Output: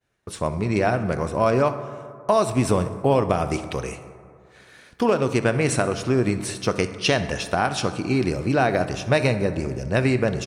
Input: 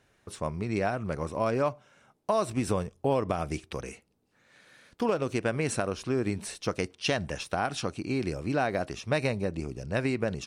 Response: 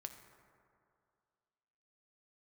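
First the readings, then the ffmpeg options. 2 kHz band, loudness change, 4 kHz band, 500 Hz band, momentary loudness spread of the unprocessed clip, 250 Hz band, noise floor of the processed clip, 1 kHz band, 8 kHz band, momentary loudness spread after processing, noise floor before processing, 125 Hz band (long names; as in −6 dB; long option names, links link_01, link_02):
+8.0 dB, +8.0 dB, +7.5 dB, +8.0 dB, 7 LU, +8.0 dB, −51 dBFS, +8.0 dB, +7.5 dB, 8 LU, −69 dBFS, +9.0 dB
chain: -filter_complex "[0:a]aecho=1:1:64|128|192|256|320:0.112|0.0662|0.0391|0.023|0.0136,agate=range=-33dB:threshold=-56dB:ratio=3:detection=peak,asplit=2[link_01][link_02];[1:a]atrim=start_sample=2205[link_03];[link_02][link_03]afir=irnorm=-1:irlink=0,volume=8dB[link_04];[link_01][link_04]amix=inputs=2:normalize=0"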